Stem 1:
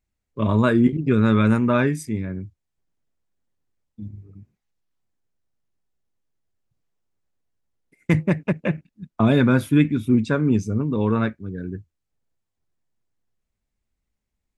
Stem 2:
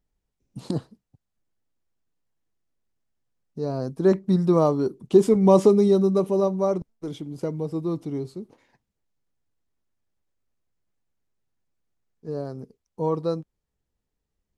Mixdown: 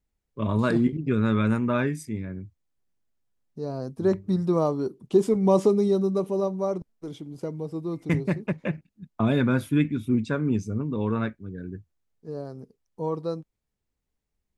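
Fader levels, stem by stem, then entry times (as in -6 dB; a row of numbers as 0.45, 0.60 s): -5.5, -4.0 dB; 0.00, 0.00 s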